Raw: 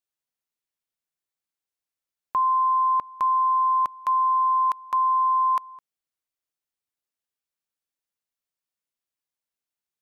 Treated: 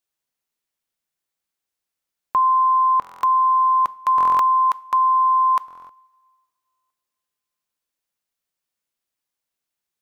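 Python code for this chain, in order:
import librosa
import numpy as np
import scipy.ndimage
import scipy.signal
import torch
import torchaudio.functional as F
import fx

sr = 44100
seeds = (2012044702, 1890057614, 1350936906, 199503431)

y = fx.rev_double_slope(x, sr, seeds[0], early_s=0.41, late_s=2.2, knee_db=-18, drr_db=17.5)
y = fx.buffer_glitch(y, sr, at_s=(3.0, 4.16, 5.66, 6.67), block=1024, repeats=9)
y = y * 10.0 ** (5.5 / 20.0)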